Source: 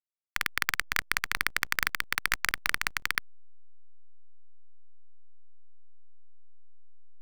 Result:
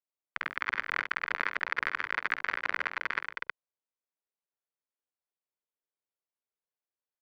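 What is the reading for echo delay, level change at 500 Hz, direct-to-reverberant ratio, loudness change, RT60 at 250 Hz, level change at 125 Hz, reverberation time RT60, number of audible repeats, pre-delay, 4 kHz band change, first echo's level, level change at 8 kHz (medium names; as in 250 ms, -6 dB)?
47 ms, +4.0 dB, no reverb, -3.0 dB, no reverb, -10.0 dB, no reverb, 4, no reverb, -9.0 dB, -10.0 dB, under -20 dB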